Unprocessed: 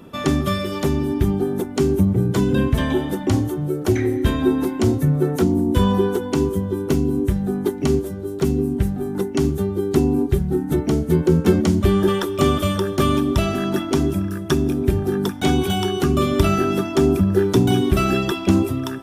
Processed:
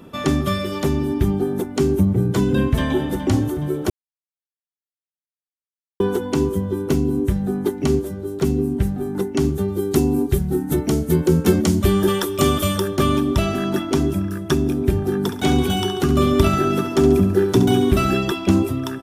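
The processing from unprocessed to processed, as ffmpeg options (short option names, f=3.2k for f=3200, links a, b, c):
-filter_complex "[0:a]asplit=2[a][b];[b]afade=t=in:st=2.57:d=0.01,afade=t=out:st=3.21:d=0.01,aecho=0:1:420|840|1260|1680|2100|2520:0.211349|0.126809|0.0760856|0.0456514|0.0273908|0.0164345[c];[a][c]amix=inputs=2:normalize=0,asettb=1/sr,asplit=3[d][e][f];[d]atrim=end=9.684[g];[e]atrim=start=9.68:end=12.88,asetpts=PTS-STARTPTS,afade=t=in:d=0.004:c=qsin,afade=t=out:st=3.196:d=0.004:c=qsin,aemphasis=mode=production:type=cd[h];[f]atrim=start=12.876[i];[g][h]acrossfade=d=0.004:c1=hsin:c2=qsin[j];[j][i]acrossfade=d=0.004:c1=qsin:c2=hsin,asettb=1/sr,asplit=3[k][l][m];[k]atrim=end=15.214[n];[l]atrim=start=15.21:end=18.1,asetpts=PTS-STARTPTS,afade=t=in:d=0.004:c=qsin,afade=t=out:st=2.886:d=0.004:c=qsin,aecho=1:1:69|138|207|276|345|414:0.316|0.168|0.0888|0.0471|0.025|0.0132,atrim=end_sample=127449[o];[m]atrim=start=18.096[p];[n][o]acrossfade=d=0.004:c1=hsin:c2=qsin[q];[q][p]acrossfade=d=0.004:c1=qsin:c2=hsin,asplit=3[r][s][t];[r]atrim=end=3.9,asetpts=PTS-STARTPTS,afade=t=out:st=3.896:d=0.004:c=hsin[u];[s]atrim=start=3.9:end=6,asetpts=PTS-STARTPTS,volume=0[v];[t]atrim=start=6,asetpts=PTS-STARTPTS,afade=t=in:d=0.004:c=hsin[w];[u][v][w]concat=n=3:v=0:a=1"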